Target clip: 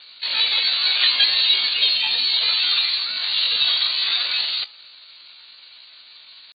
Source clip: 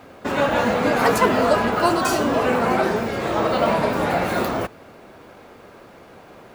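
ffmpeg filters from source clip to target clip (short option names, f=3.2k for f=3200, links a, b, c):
-af "lowpass=f=2.6k:t=q:w=0.5098,lowpass=f=2.6k:t=q:w=0.6013,lowpass=f=2.6k:t=q:w=0.9,lowpass=f=2.6k:t=q:w=2.563,afreqshift=-3100,bandreject=f=275.8:t=h:w=4,bandreject=f=551.6:t=h:w=4,bandreject=f=827.4:t=h:w=4,asetrate=68011,aresample=44100,atempo=0.64842"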